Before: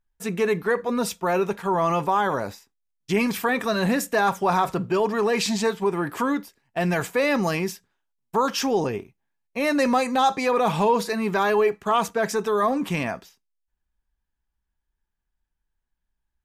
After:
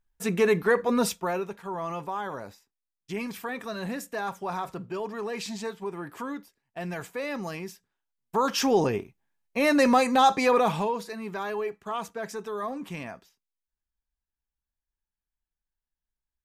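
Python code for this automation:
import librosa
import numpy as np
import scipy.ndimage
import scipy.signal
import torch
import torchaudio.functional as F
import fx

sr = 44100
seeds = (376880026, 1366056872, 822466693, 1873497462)

y = fx.gain(x, sr, db=fx.line((1.06, 0.5), (1.5, -11.0), (7.69, -11.0), (8.71, 0.5), (10.55, 0.5), (10.99, -11.0)))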